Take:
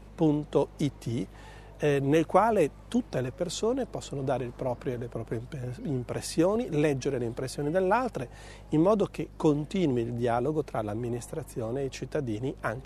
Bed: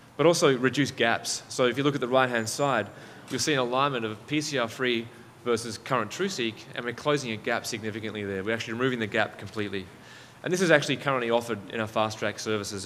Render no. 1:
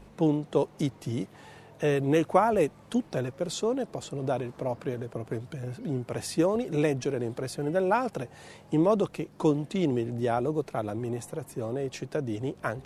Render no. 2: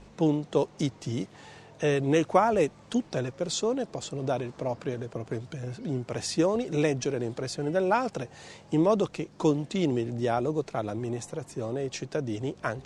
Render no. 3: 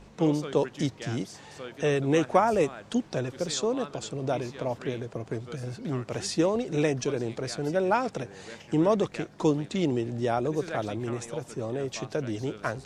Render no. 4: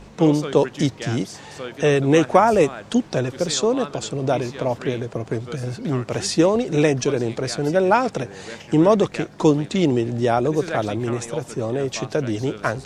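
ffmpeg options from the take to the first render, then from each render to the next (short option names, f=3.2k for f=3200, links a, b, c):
-af "bandreject=f=50:t=h:w=4,bandreject=f=100:t=h:w=4"
-af "lowpass=f=7.2k:w=0.5412,lowpass=f=7.2k:w=1.3066,highshelf=f=5k:g=10.5"
-filter_complex "[1:a]volume=-17dB[a];[0:a][a]amix=inputs=2:normalize=0"
-af "volume=8dB,alimiter=limit=-1dB:level=0:latency=1"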